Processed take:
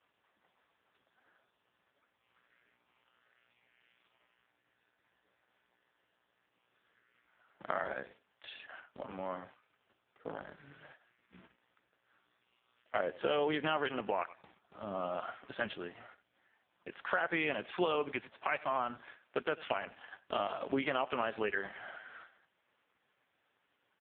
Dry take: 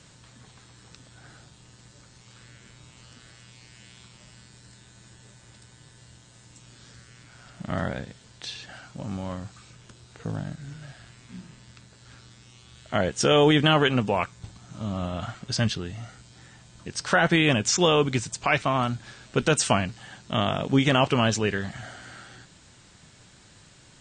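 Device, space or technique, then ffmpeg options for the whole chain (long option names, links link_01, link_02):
voicemail: -filter_complex "[0:a]agate=range=-12dB:threshold=-44dB:ratio=16:detection=peak,asettb=1/sr,asplit=3[link_01][link_02][link_03];[link_01]atrim=end=9.284[link_04];[link_02]atrim=start=9.28:end=10.27,asetpts=PTS-STARTPTS,afade=type=in:duration=0.004:curve=qsin,afade=type=out:start_time=0.986:duration=0.004:curve=qsin,asplit=2[link_05][link_06];[link_06]adelay=32,volume=-11dB[link_07];[link_05][link_07]amix=inputs=2:normalize=0,atrim=end_sample=43659[link_08];[link_03]atrim=start=10.266[link_09];[link_04][link_08]acrossfade=duration=0.004:curve1=hsin:curve2=qsin[link_10];[link_10][link_09]acrossfade=duration=0.004:curve1=qsin:curve2=hsin,highpass=440,lowpass=2700,asplit=2[link_11][link_12];[link_12]adelay=95,lowpass=frequency=4700:poles=1,volume=-21dB,asplit=2[link_13][link_14];[link_14]adelay=95,lowpass=frequency=4700:poles=1,volume=0.17[link_15];[link_11][link_13][link_15]amix=inputs=3:normalize=0,acompressor=threshold=-28dB:ratio=6" -ar 8000 -c:a libopencore_amrnb -b:a 4750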